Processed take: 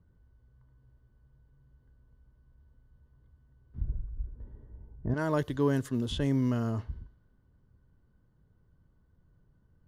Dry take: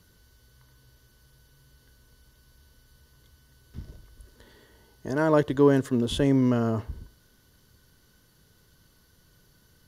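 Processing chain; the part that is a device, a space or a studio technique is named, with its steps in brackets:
low-pass that shuts in the quiet parts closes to 850 Hz, open at −19.5 dBFS
smiley-face EQ (low-shelf EQ 170 Hz +5.5 dB; parametric band 450 Hz −4.5 dB 1.6 octaves; high-shelf EQ 6,300 Hz +5 dB)
0:03.81–0:05.14: spectral tilt −3.5 dB per octave
level −6 dB

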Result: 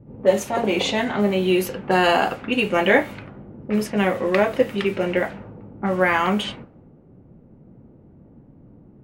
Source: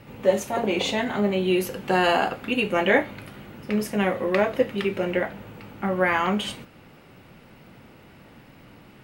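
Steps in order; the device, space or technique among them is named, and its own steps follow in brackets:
cassette deck with a dynamic noise filter (white noise bed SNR 31 dB; low-pass that shuts in the quiet parts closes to 320 Hz, open at −20 dBFS)
level +3 dB

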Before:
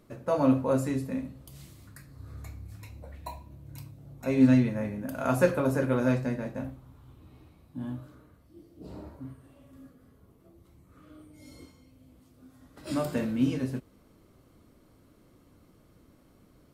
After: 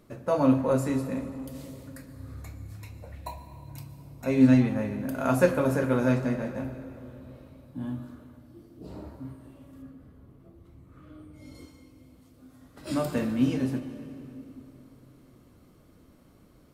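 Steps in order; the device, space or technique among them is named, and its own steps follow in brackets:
saturated reverb return (on a send at −10 dB: convolution reverb RT60 3.0 s, pre-delay 108 ms + soft clipping −22 dBFS, distortion −11 dB)
0:09.82–0:11.55: on the sum: bass and treble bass +4 dB, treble −7 dB
level +1.5 dB

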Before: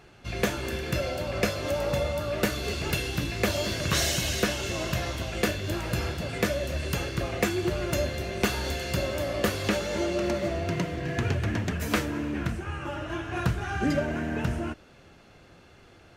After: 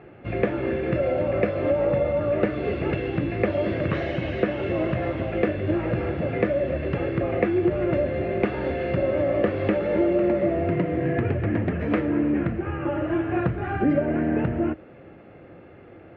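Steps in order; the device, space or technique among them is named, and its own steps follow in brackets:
bass amplifier (downward compressor 3 to 1, threshold −28 dBFS, peak gain reduction 6.5 dB; loudspeaker in its box 65–2,100 Hz, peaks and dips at 65 Hz −8 dB, 320 Hz +6 dB, 520 Hz +5 dB, 1,000 Hz −6 dB, 1,500 Hz −6 dB)
level +7 dB

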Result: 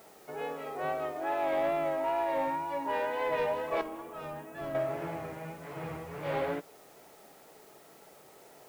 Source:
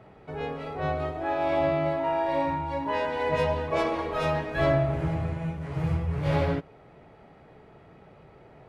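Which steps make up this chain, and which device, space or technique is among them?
tape answering machine (band-pass filter 320–3,100 Hz; soft clipping −20.5 dBFS, distortion −18 dB; tape wow and flutter; white noise bed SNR 27 dB)
0:03.81–0:04.75: octave-band graphic EQ 500/1,000/2,000/4,000 Hz −11/−5/−11/−9 dB
level −2 dB

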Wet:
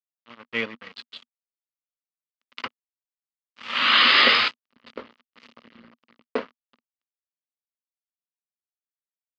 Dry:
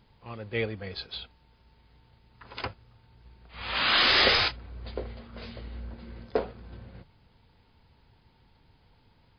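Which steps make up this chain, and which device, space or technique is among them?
blown loudspeaker (dead-zone distortion −36.5 dBFS; loudspeaker in its box 230–5,200 Hz, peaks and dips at 240 Hz +9 dB, 370 Hz −6 dB, 740 Hz −7 dB, 1,200 Hz +8 dB, 2,000 Hz +5 dB, 2,900 Hz +7 dB)
level +3 dB

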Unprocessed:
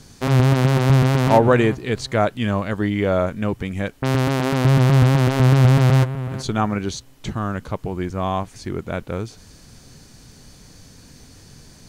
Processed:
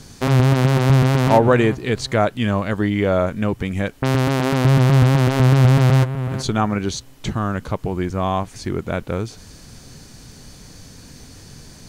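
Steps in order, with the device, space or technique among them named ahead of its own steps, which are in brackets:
parallel compression (in parallel at −2 dB: downward compressor, threshold −24 dBFS, peak gain reduction 14.5 dB)
on the sum: level −1 dB

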